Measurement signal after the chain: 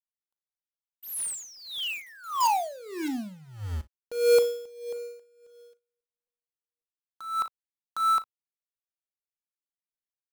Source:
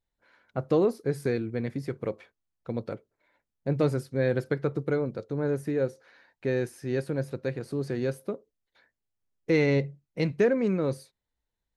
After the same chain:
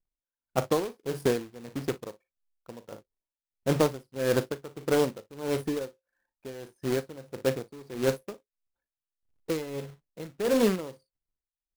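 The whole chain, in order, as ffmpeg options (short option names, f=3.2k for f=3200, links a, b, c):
-af "anlmdn=0.0251,equalizer=f=125:t=o:w=1:g=-5,equalizer=f=1k:t=o:w=1:g=9,equalizer=f=2k:t=o:w=1:g=-9,equalizer=f=8k:t=o:w=1:g=-5,acrusher=bits=2:mode=log:mix=0:aa=0.000001,aecho=1:1:38|57:0.2|0.133,aeval=exprs='val(0)*pow(10,-19*(0.5-0.5*cos(2*PI*1.6*n/s))/20)':c=same,volume=3.5dB"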